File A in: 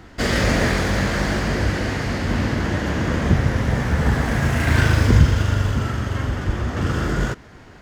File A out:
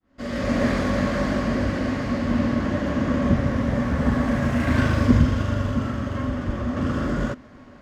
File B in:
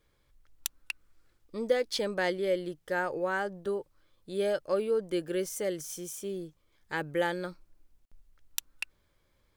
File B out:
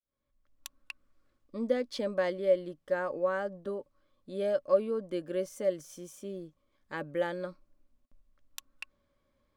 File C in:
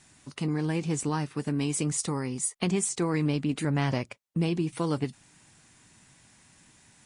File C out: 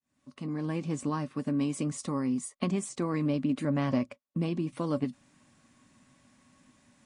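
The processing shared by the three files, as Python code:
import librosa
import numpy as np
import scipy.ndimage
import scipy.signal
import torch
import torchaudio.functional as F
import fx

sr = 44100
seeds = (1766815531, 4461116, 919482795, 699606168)

y = fx.fade_in_head(x, sr, length_s=0.73)
y = fx.high_shelf(y, sr, hz=7200.0, db=-8.5)
y = fx.small_body(y, sr, hz=(250.0, 570.0, 1100.0), ring_ms=60, db=13)
y = y * 10.0 ** (-6.0 / 20.0)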